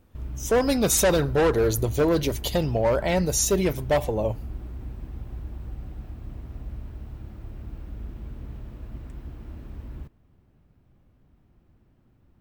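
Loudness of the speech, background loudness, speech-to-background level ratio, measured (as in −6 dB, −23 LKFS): −23.0 LKFS, −38.5 LKFS, 15.5 dB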